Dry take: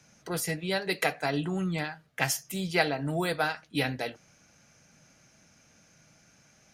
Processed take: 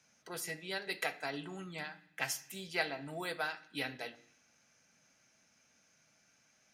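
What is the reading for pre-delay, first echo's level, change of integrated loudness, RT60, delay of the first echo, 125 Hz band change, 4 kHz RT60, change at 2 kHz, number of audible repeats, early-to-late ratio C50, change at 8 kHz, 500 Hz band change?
3 ms, none, -9.0 dB, 0.65 s, none, -17.0 dB, 0.85 s, -7.0 dB, none, 17.0 dB, -8.5 dB, -11.0 dB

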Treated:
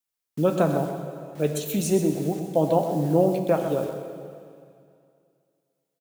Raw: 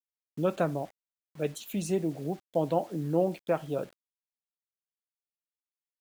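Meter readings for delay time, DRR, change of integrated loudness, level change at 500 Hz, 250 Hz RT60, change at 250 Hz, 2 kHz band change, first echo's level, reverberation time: 0.127 s, 4.5 dB, +7.0 dB, +7.0 dB, 2.4 s, +7.5 dB, +4.5 dB, -10.0 dB, 2.4 s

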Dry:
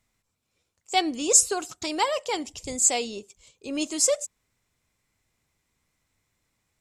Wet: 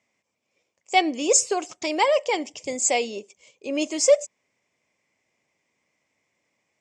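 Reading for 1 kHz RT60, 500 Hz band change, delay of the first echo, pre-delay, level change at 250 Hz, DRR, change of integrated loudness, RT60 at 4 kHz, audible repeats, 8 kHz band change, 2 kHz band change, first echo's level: none, +7.0 dB, none, none, +2.5 dB, none, +1.0 dB, none, none, -2.0 dB, +5.5 dB, none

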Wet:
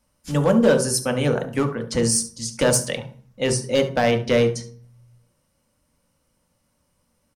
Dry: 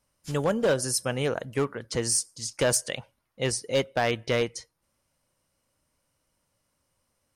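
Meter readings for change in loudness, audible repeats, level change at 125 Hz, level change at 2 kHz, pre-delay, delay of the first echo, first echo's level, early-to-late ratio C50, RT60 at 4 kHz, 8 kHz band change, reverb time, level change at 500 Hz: +6.5 dB, 1, +8.0 dB, +4.0 dB, 3 ms, 71 ms, -14.5 dB, 10.5 dB, 0.45 s, +4.0 dB, 0.45 s, +7.0 dB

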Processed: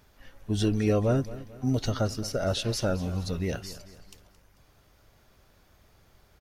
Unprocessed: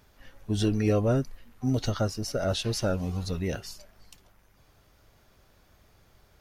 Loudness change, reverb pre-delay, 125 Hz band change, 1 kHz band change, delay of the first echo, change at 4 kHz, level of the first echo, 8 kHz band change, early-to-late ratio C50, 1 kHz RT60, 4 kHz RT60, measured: 0.0 dB, none, 0.0 dB, 0.0 dB, 0.221 s, 0.0 dB, -16.5 dB, 0.0 dB, none, none, none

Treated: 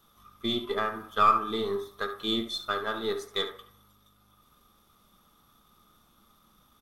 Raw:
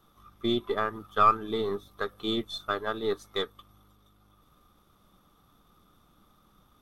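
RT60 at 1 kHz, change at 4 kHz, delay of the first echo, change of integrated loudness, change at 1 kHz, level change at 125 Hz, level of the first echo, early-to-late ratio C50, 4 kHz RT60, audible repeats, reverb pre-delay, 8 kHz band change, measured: 0.60 s, +3.5 dB, 70 ms, +0.5 dB, +0.5 dB, -3.0 dB, -12.0 dB, 8.5 dB, 0.70 s, 1, 3 ms, +5.0 dB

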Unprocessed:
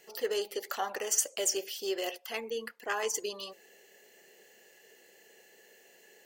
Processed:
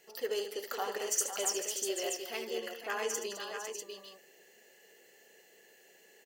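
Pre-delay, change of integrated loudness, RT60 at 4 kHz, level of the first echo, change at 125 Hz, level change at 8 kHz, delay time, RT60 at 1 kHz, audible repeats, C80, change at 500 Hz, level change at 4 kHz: none, -2.0 dB, none, -10.0 dB, n/a, -1.5 dB, 74 ms, none, 4, none, -1.5 dB, -1.5 dB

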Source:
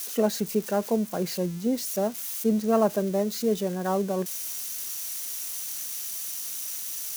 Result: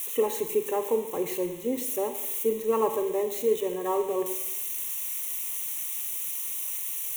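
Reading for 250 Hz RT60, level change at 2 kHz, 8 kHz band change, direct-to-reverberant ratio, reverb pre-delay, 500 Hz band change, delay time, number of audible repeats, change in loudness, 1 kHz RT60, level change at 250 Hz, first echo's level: 0.95 s, -1.5 dB, -1.0 dB, 8.0 dB, 34 ms, +0.5 dB, none, none, -0.5 dB, 0.90 s, -8.0 dB, none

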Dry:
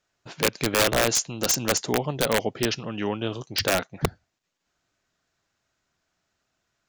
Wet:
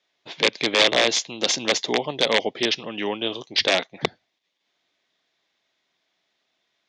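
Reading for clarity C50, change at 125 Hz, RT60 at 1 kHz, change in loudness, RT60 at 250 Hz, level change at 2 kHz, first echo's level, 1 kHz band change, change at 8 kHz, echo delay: none, -9.5 dB, none, +3.0 dB, none, +4.5 dB, none, +1.0 dB, -3.0 dB, none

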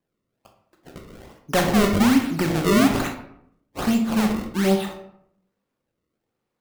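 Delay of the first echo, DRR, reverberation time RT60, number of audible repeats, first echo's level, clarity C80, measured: none, 3.0 dB, 0.75 s, none, none, 10.5 dB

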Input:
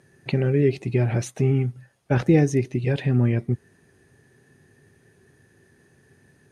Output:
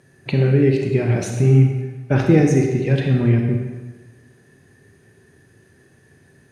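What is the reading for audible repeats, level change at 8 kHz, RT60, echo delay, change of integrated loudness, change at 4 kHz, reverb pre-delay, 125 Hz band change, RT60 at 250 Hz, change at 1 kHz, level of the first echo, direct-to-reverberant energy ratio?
none, +4.5 dB, 1.3 s, none, +5.0 dB, +4.5 dB, 29 ms, +5.5 dB, 1.4 s, +4.0 dB, none, 2.0 dB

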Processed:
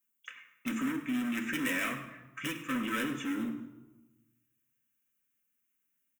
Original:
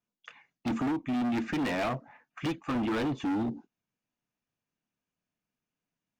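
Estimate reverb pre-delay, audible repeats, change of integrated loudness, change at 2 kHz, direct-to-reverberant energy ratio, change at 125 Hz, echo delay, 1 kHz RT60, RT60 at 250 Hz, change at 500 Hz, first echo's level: 4 ms, 1, -2.5 dB, +4.0 dB, 1.5 dB, -9.0 dB, 0.103 s, 1.1 s, 1.4 s, -8.5 dB, -14.5 dB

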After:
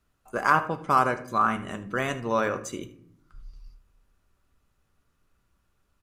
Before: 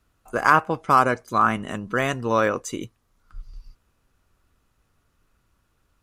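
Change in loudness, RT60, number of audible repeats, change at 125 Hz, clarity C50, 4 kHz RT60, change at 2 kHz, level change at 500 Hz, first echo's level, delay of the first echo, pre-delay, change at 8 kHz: -4.0 dB, 0.65 s, 1, -4.5 dB, 13.0 dB, 0.35 s, -4.5 dB, -4.5 dB, -17.0 dB, 76 ms, 5 ms, -4.5 dB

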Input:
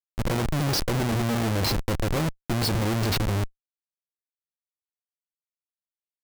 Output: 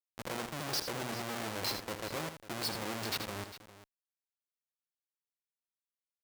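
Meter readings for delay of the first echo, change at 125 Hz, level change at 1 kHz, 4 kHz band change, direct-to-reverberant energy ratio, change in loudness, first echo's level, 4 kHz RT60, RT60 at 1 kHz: 80 ms, -21.0 dB, -9.0 dB, -7.5 dB, none, -11.5 dB, -9.0 dB, none, none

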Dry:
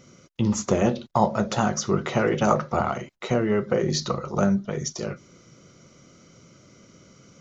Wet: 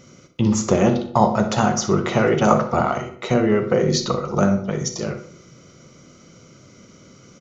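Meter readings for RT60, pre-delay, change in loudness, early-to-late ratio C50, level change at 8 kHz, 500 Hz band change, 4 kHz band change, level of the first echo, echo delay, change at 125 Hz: 0.60 s, 32 ms, +5.0 dB, 9.5 dB, n/a, +5.0 dB, +4.5 dB, -13.5 dB, 62 ms, +5.0 dB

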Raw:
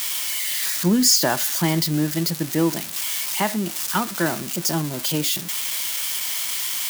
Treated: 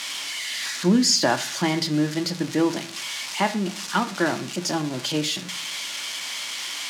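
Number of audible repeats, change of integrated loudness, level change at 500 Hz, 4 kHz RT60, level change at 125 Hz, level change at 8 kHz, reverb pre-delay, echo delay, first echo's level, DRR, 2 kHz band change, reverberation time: none, -3.0 dB, 0.0 dB, 0.50 s, -4.0 dB, -6.0 dB, 3 ms, none, none, 8.0 dB, +0.5 dB, 0.45 s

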